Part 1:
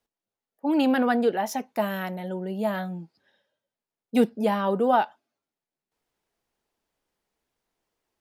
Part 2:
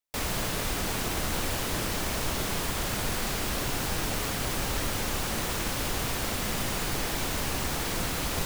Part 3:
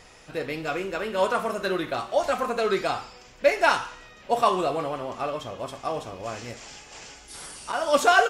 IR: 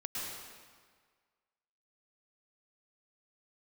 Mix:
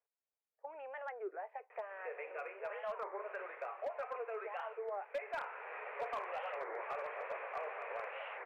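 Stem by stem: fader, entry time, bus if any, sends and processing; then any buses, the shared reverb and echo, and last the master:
-9.0 dB, 0.00 s, bus A, no send, dry
-10.0 dB, 1.75 s, no bus, no send, auto duck -15 dB, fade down 0.70 s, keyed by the first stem
-5.5 dB, 1.70 s, bus A, no send, dry
bus A: 0.0 dB, compressor 3:1, threshold -41 dBFS, peak gain reduction 16.5 dB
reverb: off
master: Chebyshev band-pass 430–2500 Hz, order 5; overloaded stage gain 33.5 dB; record warp 33 1/3 rpm, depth 250 cents

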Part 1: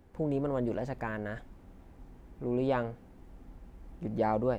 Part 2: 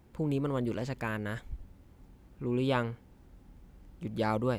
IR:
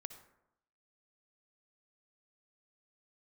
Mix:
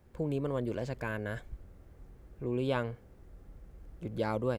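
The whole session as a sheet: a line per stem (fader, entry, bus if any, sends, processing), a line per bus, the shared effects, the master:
-3.0 dB, 0.00 s, no send, compressor, threshold -33 dBFS, peak gain reduction 9 dB; fixed phaser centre 880 Hz, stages 6
-4.0 dB, 1.9 ms, no send, dry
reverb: off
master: dry

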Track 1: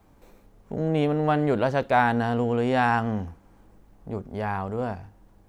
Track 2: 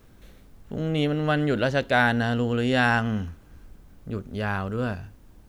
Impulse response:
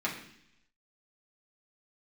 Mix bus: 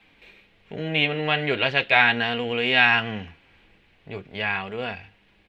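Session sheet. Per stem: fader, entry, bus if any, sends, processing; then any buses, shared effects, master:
+1.5 dB, 0.00 s, no send, weighting filter D; flange 0.4 Hz, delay 3.7 ms, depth 5.1 ms, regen -56%
-16.0 dB, 3 ms, polarity flipped, no send, band shelf 2500 Hz +10.5 dB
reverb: off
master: EQ curve 1300 Hz 0 dB, 2500 Hz +12 dB, 4100 Hz +2 dB, 6100 Hz -10 dB

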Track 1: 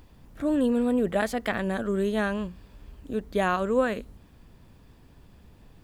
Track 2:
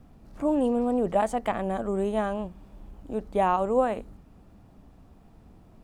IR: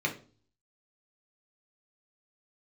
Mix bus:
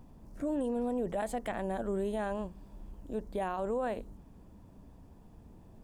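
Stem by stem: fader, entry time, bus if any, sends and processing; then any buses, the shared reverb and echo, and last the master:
-13.5 dB, 0.00 s, no send, bell 900 Hz +13 dB 0.94 oct
-1.5 dB, 0.00 s, polarity flipped, no send, band shelf 1900 Hz -14.5 dB 2.6 oct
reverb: off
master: limiter -25.5 dBFS, peak gain reduction 9 dB

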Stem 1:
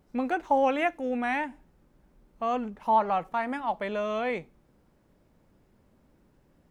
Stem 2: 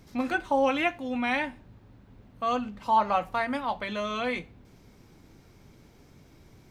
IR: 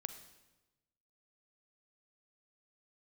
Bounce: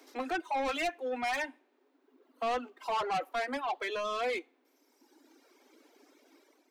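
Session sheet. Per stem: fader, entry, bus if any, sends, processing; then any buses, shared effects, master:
-1.5 dB, 0.00 s, no send, median filter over 9 samples; low shelf 130 Hz -10.5 dB
+2.5 dB, 0.00 s, polarity flipped, send -24 dB, AGC gain up to 5 dB; auto duck -8 dB, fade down 0.25 s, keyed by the first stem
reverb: on, RT60 1.1 s, pre-delay 36 ms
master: steep high-pass 260 Hz 96 dB/oct; soft clip -27.5 dBFS, distortion -8 dB; reverb removal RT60 1.6 s

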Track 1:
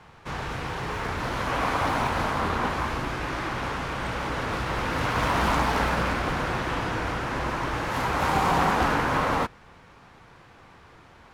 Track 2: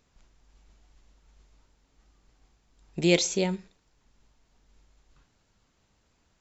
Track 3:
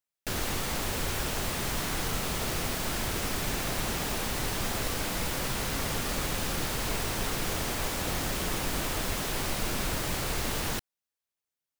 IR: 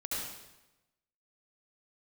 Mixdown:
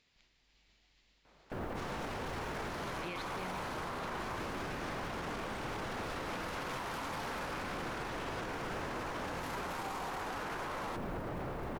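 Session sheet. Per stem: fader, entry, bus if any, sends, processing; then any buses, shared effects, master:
-4.0 dB, 1.50 s, no send, HPF 270 Hz 24 dB/oct; high shelf 4100 Hz +6.5 dB
-8.0 dB, 0.00 s, no send, treble ducked by the level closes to 2100 Hz; band shelf 3000 Hz +11 dB
-0.5 dB, 1.25 s, no send, LPF 1100 Hz 12 dB/oct; modulation noise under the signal 32 dB; fast leveller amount 50%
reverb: off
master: low shelf 80 Hz -9.5 dB; limiter -31.5 dBFS, peak gain reduction 19 dB

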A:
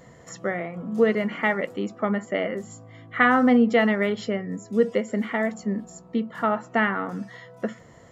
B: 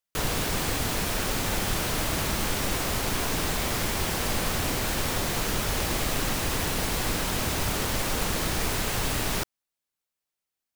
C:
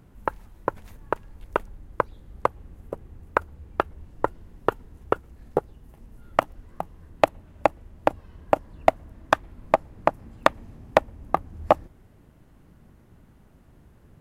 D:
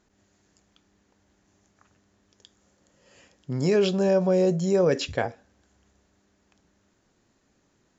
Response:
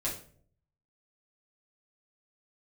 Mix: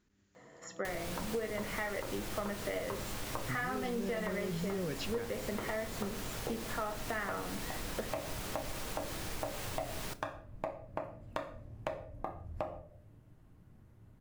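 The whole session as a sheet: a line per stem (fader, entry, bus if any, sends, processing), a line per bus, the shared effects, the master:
-6.5 dB, 0.35 s, bus A, send -10.5 dB, Bessel high-pass 300 Hz, order 2
-3.5 dB, 0.70 s, bus B, send -24 dB, dry
-11.5 dB, 0.90 s, bus B, send -9.5 dB, bell 99 Hz +7 dB 0.89 oct
-4.0 dB, 0.00 s, bus A, no send, bell 690 Hz -13 dB 1.2 oct
bus A: 0.0 dB, high shelf 5200 Hz -9 dB; limiter -22.5 dBFS, peak gain reduction 10.5 dB
bus B: 0.0 dB, compressor 2.5:1, threshold -44 dBFS, peak gain reduction 15.5 dB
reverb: on, RT60 0.55 s, pre-delay 6 ms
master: compressor 4:1, threshold -34 dBFS, peak gain reduction 10.5 dB

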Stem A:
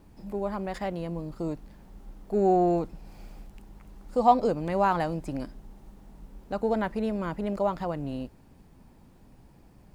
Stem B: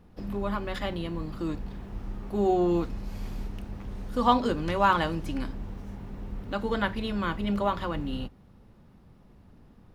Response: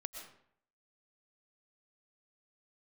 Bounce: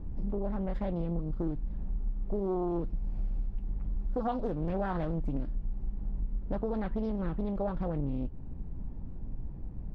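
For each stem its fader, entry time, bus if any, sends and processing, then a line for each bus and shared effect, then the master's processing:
-1.5 dB, 0.00 s, no send, tilt -4.5 dB/oct; compressor, threshold -27 dBFS, peak gain reduction 15 dB
-6.5 dB, 0.6 ms, no send, flange 0.32 Hz, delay 9.4 ms, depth 9.5 ms, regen +43%; auto duck -9 dB, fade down 0.30 s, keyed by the first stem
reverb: off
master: high shelf 4600 Hz -10.5 dB; Doppler distortion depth 0.48 ms

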